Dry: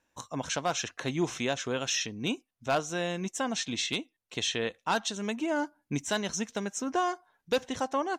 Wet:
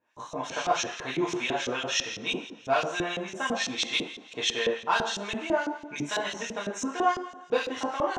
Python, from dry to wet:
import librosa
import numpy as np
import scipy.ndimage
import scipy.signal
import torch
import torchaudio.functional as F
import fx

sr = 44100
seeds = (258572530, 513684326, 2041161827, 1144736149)

y = fx.rev_double_slope(x, sr, seeds[0], early_s=0.53, late_s=2.2, knee_db=-19, drr_db=-6.0)
y = fx.filter_lfo_bandpass(y, sr, shape='saw_up', hz=6.0, low_hz=310.0, high_hz=4400.0, q=0.76)